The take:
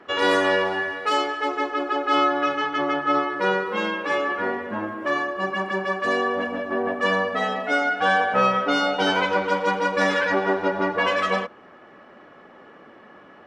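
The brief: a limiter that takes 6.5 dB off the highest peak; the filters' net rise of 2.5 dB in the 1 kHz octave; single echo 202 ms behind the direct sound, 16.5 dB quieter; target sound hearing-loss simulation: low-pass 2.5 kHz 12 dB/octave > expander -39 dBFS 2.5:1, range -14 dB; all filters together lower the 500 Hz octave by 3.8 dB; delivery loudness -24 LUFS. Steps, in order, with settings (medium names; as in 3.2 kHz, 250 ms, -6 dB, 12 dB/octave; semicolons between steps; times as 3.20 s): peaking EQ 500 Hz -6 dB; peaking EQ 1 kHz +5 dB; peak limiter -13 dBFS; low-pass 2.5 kHz 12 dB/octave; delay 202 ms -16.5 dB; expander -39 dBFS 2.5:1, range -14 dB; trim -0.5 dB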